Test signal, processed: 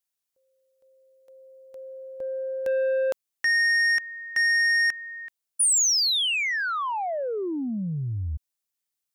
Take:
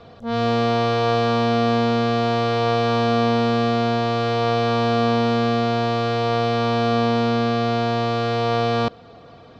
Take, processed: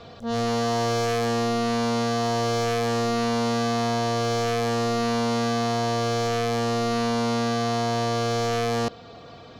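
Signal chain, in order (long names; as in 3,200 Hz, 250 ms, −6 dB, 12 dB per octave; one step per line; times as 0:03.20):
soft clipping −21 dBFS
high-shelf EQ 3,500 Hz +9.5 dB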